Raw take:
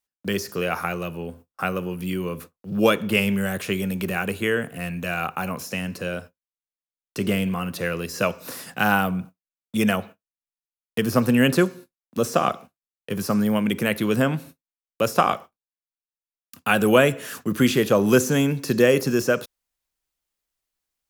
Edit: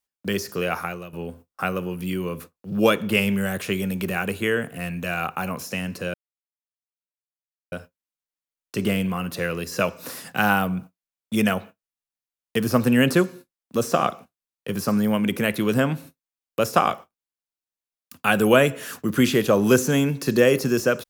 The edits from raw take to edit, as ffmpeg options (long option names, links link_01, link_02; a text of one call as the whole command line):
ffmpeg -i in.wav -filter_complex "[0:a]asplit=3[link_01][link_02][link_03];[link_01]atrim=end=1.13,asetpts=PTS-STARTPTS,afade=type=out:start_time=0.72:duration=0.41:silence=0.237137[link_04];[link_02]atrim=start=1.13:end=6.14,asetpts=PTS-STARTPTS,afade=type=in:duration=0.004:curve=hsin:silence=0.237137,afade=type=out:start_time=5.006:duration=0.004:curve=hsin,apad=pad_dur=1.58[link_05];[link_03]atrim=start=6.14,asetpts=PTS-STARTPTS,afade=type=in:duration=0.004:curve=hsin[link_06];[link_04][link_05][link_06]concat=n=3:v=0:a=1" out.wav